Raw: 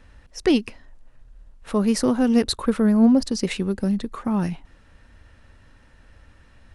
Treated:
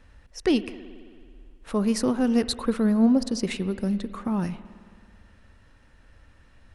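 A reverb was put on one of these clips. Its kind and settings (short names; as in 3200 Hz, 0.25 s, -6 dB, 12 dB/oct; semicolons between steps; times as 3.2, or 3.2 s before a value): spring tank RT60 2.1 s, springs 54 ms, chirp 60 ms, DRR 14 dB; gain -3.5 dB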